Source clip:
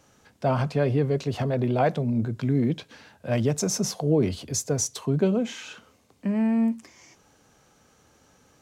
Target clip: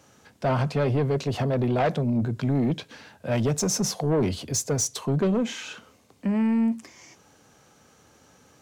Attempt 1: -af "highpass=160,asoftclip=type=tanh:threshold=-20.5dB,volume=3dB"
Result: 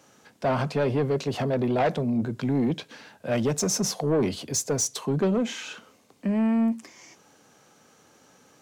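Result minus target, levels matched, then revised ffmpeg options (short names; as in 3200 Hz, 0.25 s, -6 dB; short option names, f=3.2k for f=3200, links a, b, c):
125 Hz band -3.5 dB
-af "highpass=69,asoftclip=type=tanh:threshold=-20.5dB,volume=3dB"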